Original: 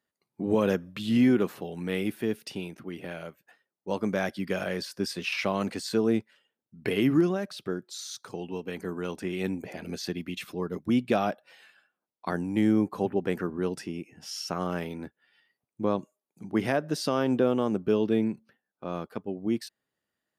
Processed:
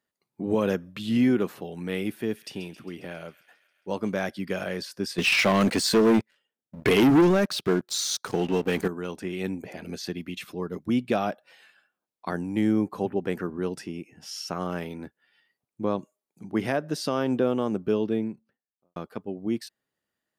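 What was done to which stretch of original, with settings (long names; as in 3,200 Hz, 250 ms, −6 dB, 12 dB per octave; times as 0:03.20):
0:02.17–0:04.29: delay with a high-pass on its return 135 ms, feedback 67%, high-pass 1,900 Hz, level −14 dB
0:05.18–0:08.88: leveller curve on the samples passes 3
0:17.85–0:18.96: fade out and dull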